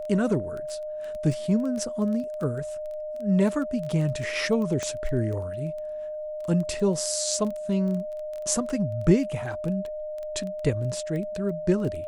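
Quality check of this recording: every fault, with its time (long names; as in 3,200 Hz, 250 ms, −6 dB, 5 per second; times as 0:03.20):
surface crackle 11 per second −31 dBFS
whistle 610 Hz −31 dBFS
0:04.83: click −17 dBFS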